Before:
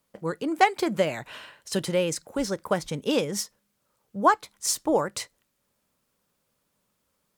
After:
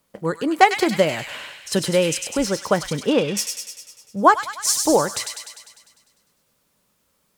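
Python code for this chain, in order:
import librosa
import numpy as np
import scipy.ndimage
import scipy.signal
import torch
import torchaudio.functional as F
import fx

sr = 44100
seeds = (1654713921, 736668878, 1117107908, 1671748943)

y = fx.lowpass(x, sr, hz=2900.0, slope=12, at=(2.91, 3.37))
y = fx.echo_wet_highpass(y, sr, ms=100, feedback_pct=63, hz=2000.0, wet_db=-4)
y = y * librosa.db_to_amplitude(6.0)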